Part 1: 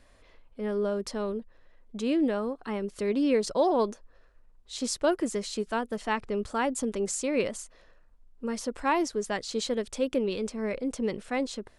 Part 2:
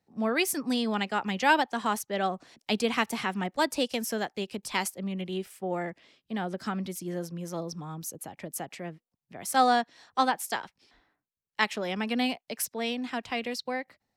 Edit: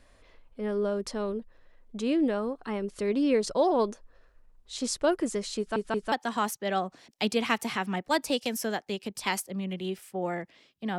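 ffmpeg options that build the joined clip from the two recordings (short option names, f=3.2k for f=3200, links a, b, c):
-filter_complex "[0:a]apad=whole_dur=10.98,atrim=end=10.98,asplit=3[a][b][c];[a]atrim=end=5.762[d];[b]atrim=start=5.578:end=5.762[e];[c]atrim=start=5.578:end=5.762[f];[1:a]atrim=start=1.598:end=6.46[g];[d][e]acrossfade=d=0.004:c1=hsin:c2=hsin[h];[h][f]acrossfade=d=0.004:c1=hsin:c2=hsin[i];[i][g]acrossfade=d=0.004:c1=hsin:c2=hsin"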